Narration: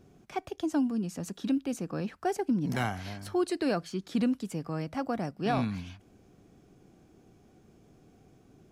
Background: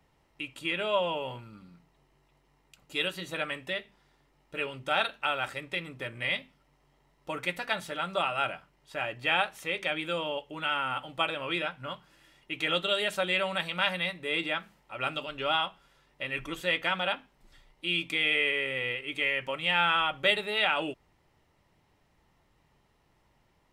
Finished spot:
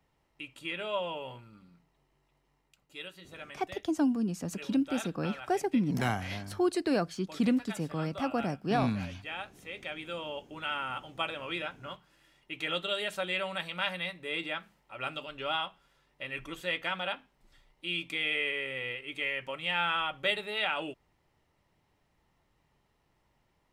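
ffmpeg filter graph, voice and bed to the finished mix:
-filter_complex "[0:a]adelay=3250,volume=1.06[s0];[1:a]volume=1.41,afade=t=out:st=2.53:d=0.42:silence=0.421697,afade=t=in:st=9.49:d=1.02:silence=0.375837[s1];[s0][s1]amix=inputs=2:normalize=0"

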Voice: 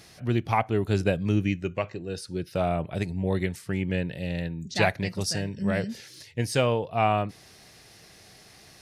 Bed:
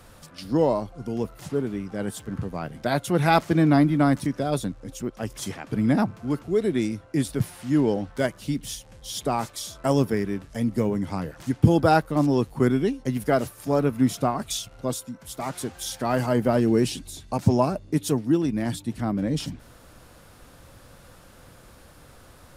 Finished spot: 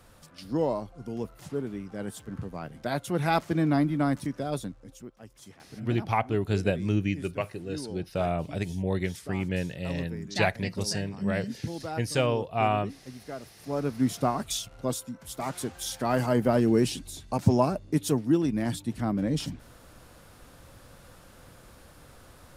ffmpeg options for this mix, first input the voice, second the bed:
-filter_complex "[0:a]adelay=5600,volume=0.794[s0];[1:a]volume=2.99,afade=t=out:st=4.54:d=0.64:silence=0.266073,afade=t=in:st=13.42:d=0.89:silence=0.16788[s1];[s0][s1]amix=inputs=2:normalize=0"

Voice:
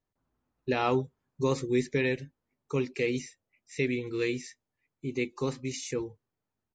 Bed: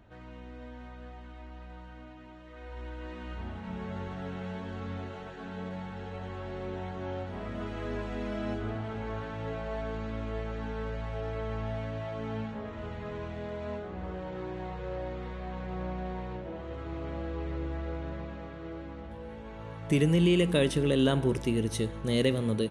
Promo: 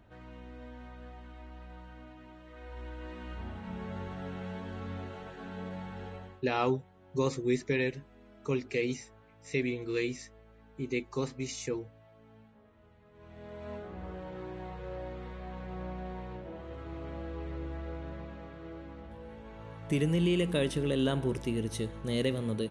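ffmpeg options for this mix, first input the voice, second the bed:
-filter_complex "[0:a]adelay=5750,volume=0.794[s0];[1:a]volume=6.31,afade=t=out:st=6.06:d=0.36:silence=0.1,afade=t=in:st=13.13:d=0.65:silence=0.125893[s1];[s0][s1]amix=inputs=2:normalize=0"

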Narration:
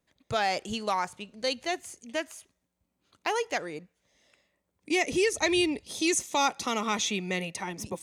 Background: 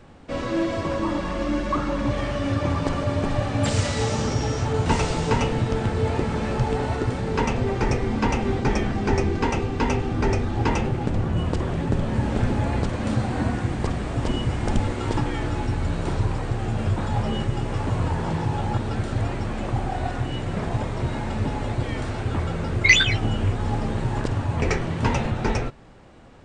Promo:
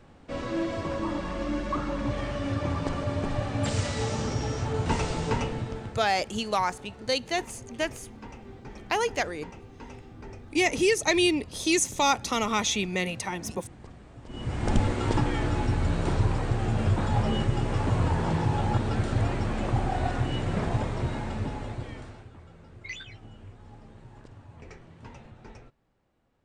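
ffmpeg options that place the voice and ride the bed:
-filter_complex "[0:a]adelay=5650,volume=1.33[s0];[1:a]volume=5.62,afade=t=out:st=5.29:d=0.76:silence=0.158489,afade=t=in:st=14.28:d=0.48:silence=0.0944061,afade=t=out:st=20.57:d=1.74:silence=0.0707946[s1];[s0][s1]amix=inputs=2:normalize=0"

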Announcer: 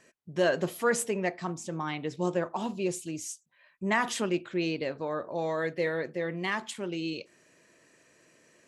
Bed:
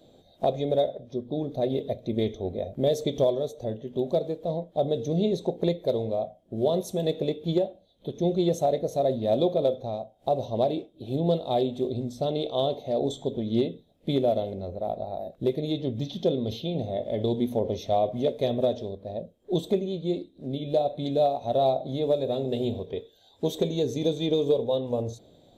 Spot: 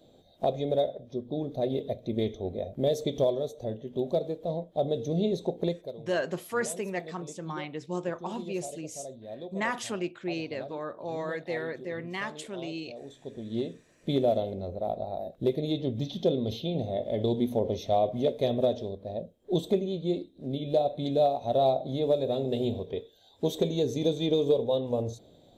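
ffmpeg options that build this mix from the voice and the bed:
-filter_complex "[0:a]adelay=5700,volume=0.668[s0];[1:a]volume=5.01,afade=t=out:st=5.61:d=0.33:silence=0.177828,afade=t=in:st=13.1:d=1.15:silence=0.149624[s1];[s0][s1]amix=inputs=2:normalize=0"

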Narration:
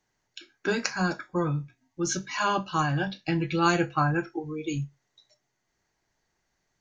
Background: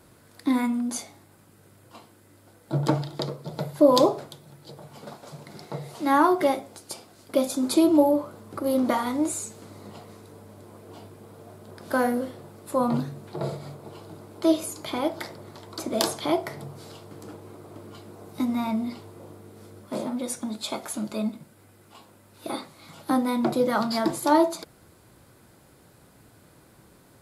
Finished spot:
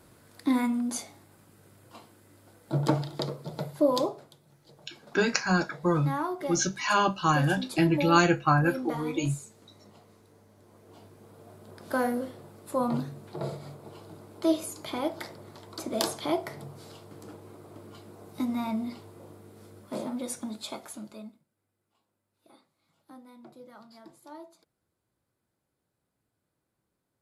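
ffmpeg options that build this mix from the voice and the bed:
-filter_complex "[0:a]adelay=4500,volume=1.26[s0];[1:a]volume=2,afade=t=out:st=3.42:d=0.74:silence=0.316228,afade=t=in:st=10.55:d=1.1:silence=0.398107,afade=t=out:st=20.39:d=1.04:silence=0.0749894[s1];[s0][s1]amix=inputs=2:normalize=0"

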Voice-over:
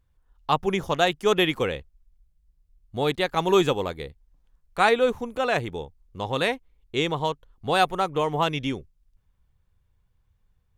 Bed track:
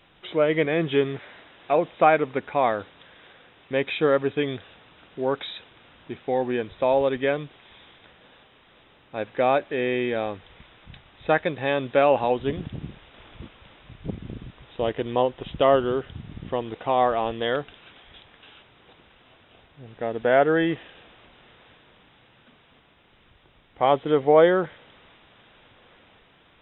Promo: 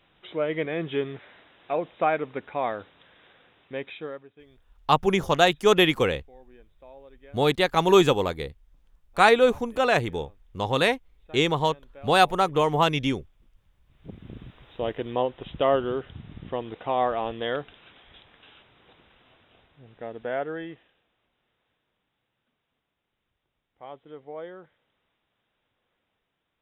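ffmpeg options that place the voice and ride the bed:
-filter_complex "[0:a]adelay=4400,volume=1.33[s0];[1:a]volume=7.94,afade=t=out:st=3.53:d=0.75:silence=0.0841395,afade=t=in:st=13.86:d=0.56:silence=0.0630957,afade=t=out:st=19.15:d=1.87:silence=0.112202[s1];[s0][s1]amix=inputs=2:normalize=0"

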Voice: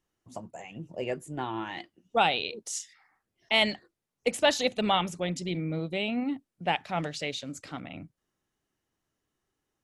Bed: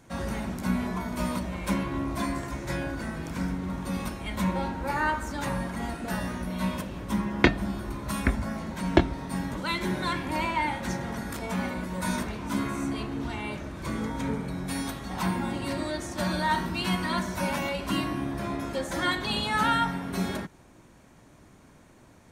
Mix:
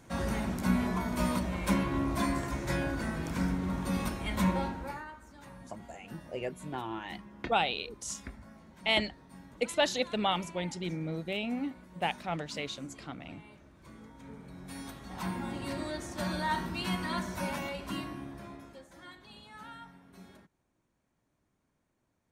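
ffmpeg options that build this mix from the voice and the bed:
-filter_complex "[0:a]adelay=5350,volume=0.631[s0];[1:a]volume=5.01,afade=t=out:st=4.47:d=0.58:silence=0.105925,afade=t=in:st=14.21:d=1.5:silence=0.188365,afade=t=out:st=17.37:d=1.52:silence=0.125893[s1];[s0][s1]amix=inputs=2:normalize=0"

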